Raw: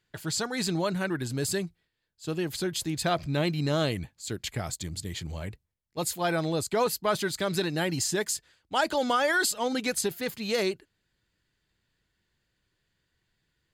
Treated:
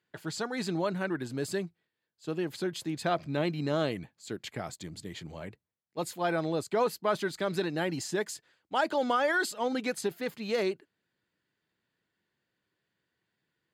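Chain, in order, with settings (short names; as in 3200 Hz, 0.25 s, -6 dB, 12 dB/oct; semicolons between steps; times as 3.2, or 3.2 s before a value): HPF 180 Hz 12 dB/oct; high shelf 3600 Hz -11.5 dB; gain -1 dB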